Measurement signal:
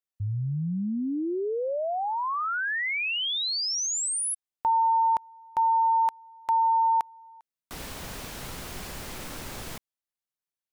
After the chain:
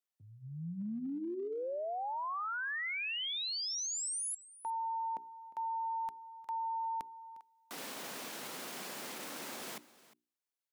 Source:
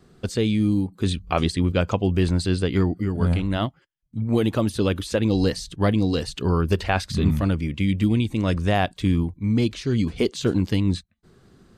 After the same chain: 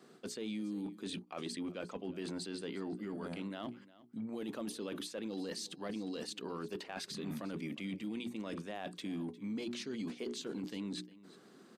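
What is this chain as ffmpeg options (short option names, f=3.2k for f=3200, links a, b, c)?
-af "highpass=f=210:w=0.5412,highpass=f=210:w=1.3066,bandreject=f=60:t=h:w=6,bandreject=f=120:t=h:w=6,bandreject=f=180:t=h:w=6,bandreject=f=240:t=h:w=6,bandreject=f=300:t=h:w=6,bandreject=f=360:t=h:w=6,bandreject=f=420:t=h:w=6,areverse,acompressor=threshold=-34dB:ratio=6:attack=0.15:release=89:knee=1:detection=rms,areverse,aecho=1:1:355:0.112,volume=-2dB"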